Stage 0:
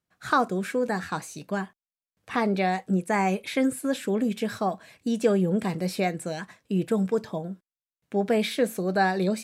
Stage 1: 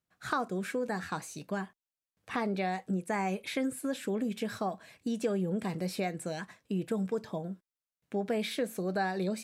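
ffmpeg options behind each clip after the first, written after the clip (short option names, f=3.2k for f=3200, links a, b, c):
-af "acompressor=threshold=-28dB:ratio=2,volume=-3.5dB"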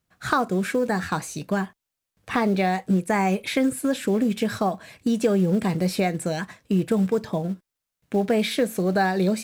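-filter_complex "[0:a]lowshelf=f=110:g=8,asplit=2[a][b];[b]acrusher=bits=4:mode=log:mix=0:aa=0.000001,volume=-8.5dB[c];[a][c]amix=inputs=2:normalize=0,volume=6.5dB"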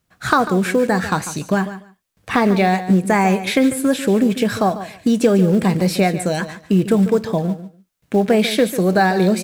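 -af "aecho=1:1:145|290:0.224|0.0358,volume=6.5dB"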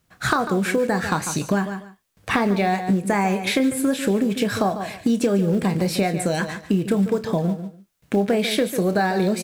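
-filter_complex "[0:a]acompressor=threshold=-23dB:ratio=3,asplit=2[a][b];[b]adelay=30,volume=-13dB[c];[a][c]amix=inputs=2:normalize=0,volume=3dB"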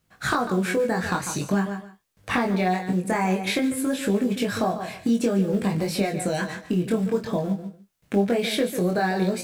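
-af "flanger=delay=19.5:depth=3:speed=0.51"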